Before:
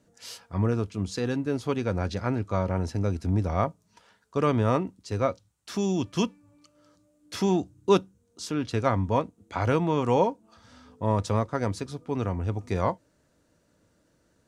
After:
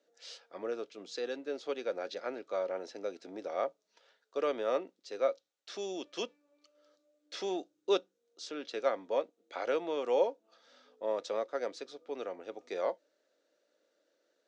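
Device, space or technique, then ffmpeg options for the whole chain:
phone speaker on a table: -af "highpass=frequency=360:width=0.5412,highpass=frequency=360:width=1.3066,equalizer=frequency=550:width_type=q:width=4:gain=6,equalizer=frequency=1000:width_type=q:width=4:gain=-9,equalizer=frequency=3700:width_type=q:width=4:gain=5,lowpass=frequency=6400:width=0.5412,lowpass=frequency=6400:width=1.3066,volume=-7dB"

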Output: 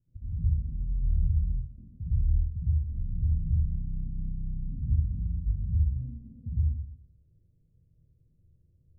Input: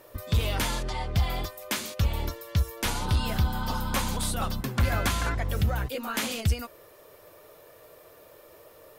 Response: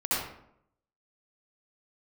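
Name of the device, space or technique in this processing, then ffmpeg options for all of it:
club heard from the street: -filter_complex "[0:a]alimiter=limit=-22.5dB:level=0:latency=1:release=378,lowpass=frequency=150:width=0.5412,lowpass=frequency=150:width=1.3066[link_01];[1:a]atrim=start_sample=2205[link_02];[link_01][link_02]afir=irnorm=-1:irlink=0,volume=-4.5dB"

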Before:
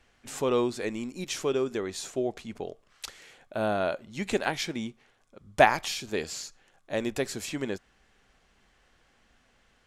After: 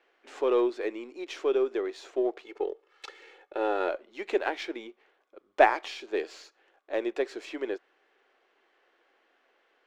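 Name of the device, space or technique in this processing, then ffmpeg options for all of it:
crystal radio: -filter_complex "[0:a]asettb=1/sr,asplit=3[link_01][link_02][link_03];[link_01]atrim=end=2.434[link_04];[link_02]atrim=start=2.43:end=3.89,asetpts=PTS-STARTPTS,afade=type=in:duration=0.004:curve=qsin,afade=type=out:start_time=1.456:duration=0.004:curve=qsin,aecho=1:1:2.3:0.81,atrim=end_sample=64386[link_05];[link_03]atrim=start=3.886[link_06];[link_04][link_05]acrossfade=duration=0.004:curve1=hsin:curve2=qsin[link_07];[link_07][link_06]acrossfade=duration=0.004:curve1=qsin:curve2=hsin,highpass=380,lowpass=3000,aeval=exprs='if(lt(val(0),0),0.708*val(0),val(0))':channel_layout=same,lowshelf=frequency=240:width_type=q:width=3:gain=-12"

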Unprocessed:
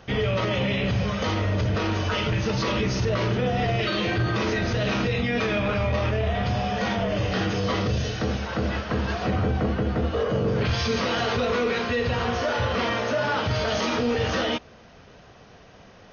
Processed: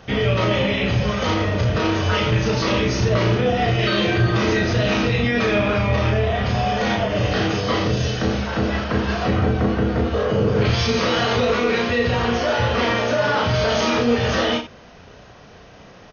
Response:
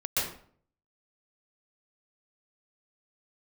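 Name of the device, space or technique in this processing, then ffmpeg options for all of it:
slapback doubling: -filter_complex "[0:a]asplit=3[link_01][link_02][link_03];[link_02]adelay=34,volume=-4dB[link_04];[link_03]adelay=89,volume=-12dB[link_05];[link_01][link_04][link_05]amix=inputs=3:normalize=0,volume=3.5dB"

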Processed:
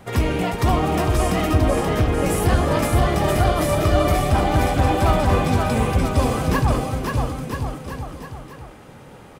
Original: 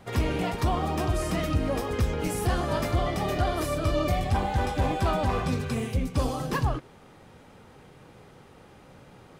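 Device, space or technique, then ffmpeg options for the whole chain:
exciter from parts: -filter_complex "[0:a]asettb=1/sr,asplit=3[link_01][link_02][link_03];[link_01]atrim=end=1.514[link_04];[link_02]atrim=start=1.51:end=2.26,asetpts=PTS-STARTPTS,afade=type=in:duration=0.004:curve=qsin,afade=type=out:start_time=0.746:duration=0.004:curve=qsin,lowpass=3600[link_05];[link_03]atrim=start=2.256[link_06];[link_04][link_05]acrossfade=duration=0.004:curve1=hsin:curve2=qsin[link_07];[link_07][link_06]acrossfade=duration=0.004:curve1=qsin:curve2=hsin,asplit=2[link_08][link_09];[link_09]highpass=3500,asoftclip=type=tanh:threshold=-38.5dB,highpass=4100,volume=-7.5dB[link_10];[link_08][link_10]amix=inputs=2:normalize=0,aecho=1:1:530|980.5|1363|1689|1966:0.631|0.398|0.251|0.158|0.1,volume=6dB"

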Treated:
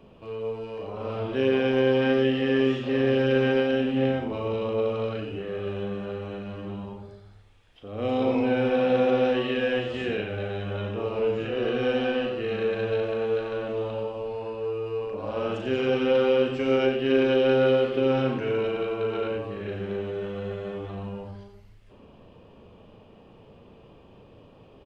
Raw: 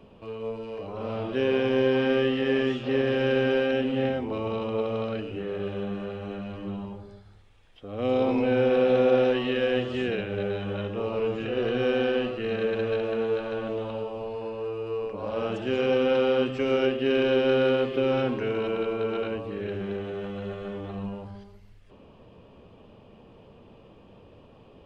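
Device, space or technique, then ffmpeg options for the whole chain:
slapback doubling: -filter_complex "[0:a]asplit=3[link_01][link_02][link_03];[link_02]adelay=38,volume=-6dB[link_04];[link_03]adelay=90,volume=-8.5dB[link_05];[link_01][link_04][link_05]amix=inputs=3:normalize=0,volume=-1dB"

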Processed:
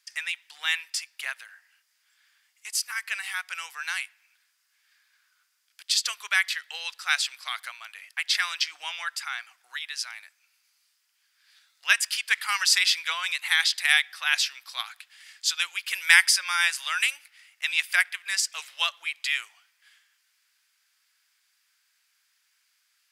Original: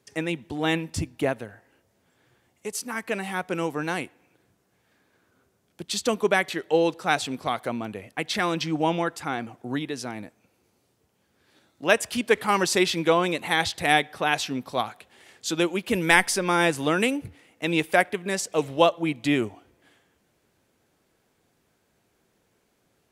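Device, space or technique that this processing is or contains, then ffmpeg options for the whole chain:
headphones lying on a table: -af "highpass=frequency=1500:width=0.5412,highpass=frequency=1500:width=1.3066,equalizer=frequency=4900:width_type=o:width=0.21:gain=8,volume=3.5dB"

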